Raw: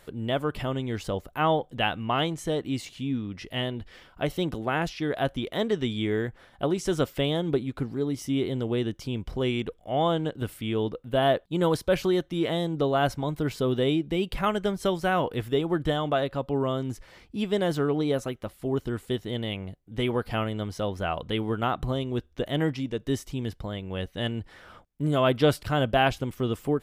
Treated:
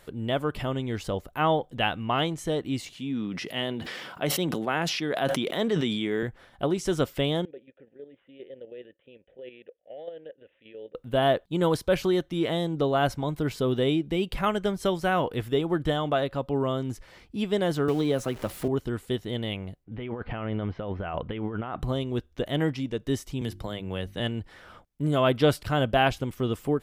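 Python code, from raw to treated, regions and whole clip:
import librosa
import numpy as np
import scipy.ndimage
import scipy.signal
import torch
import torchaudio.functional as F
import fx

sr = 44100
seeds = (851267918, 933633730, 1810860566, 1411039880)

y = fx.chain(x, sr, fx.highpass_res(hz=160.0, q=1.7),
    fx.low_shelf(hz=230.0, db=-10.5),
    fx.sustainer(db_per_s=27.0), at=(2.96, 6.23))
y = fx.chain(y, sr, fx.vowel_filter(vowel='e'),
    fx.resample_bad(factor=6, down='none', up='filtered'),
    fx.level_steps(step_db=10), at=(7.45, 10.95))
y = fx.chain(y, sr, fx.zero_step(step_db=-41.5),
    fx.band_squash(depth_pct=70), at=(17.88, 18.68))
y = fx.chain(y, sr, fx.lowpass(hz=2700.0, slope=24),
    fx.over_compress(threshold_db=-32.0, ratio=-1.0), at=(19.84, 21.8))
y = fx.chain(y, sr, fx.peak_eq(hz=11000.0, db=4.0, octaves=1.1),
    fx.hum_notches(base_hz=50, count=7),
    fx.band_squash(depth_pct=70), at=(23.41, 24.2))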